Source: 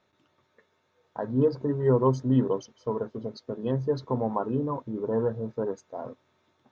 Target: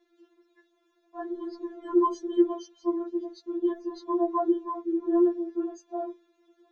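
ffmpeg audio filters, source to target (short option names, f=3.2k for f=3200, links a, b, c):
-af "equalizer=f=350:t=o:w=0.54:g=13,afftfilt=real='re*4*eq(mod(b,16),0)':imag='im*4*eq(mod(b,16),0)':win_size=2048:overlap=0.75"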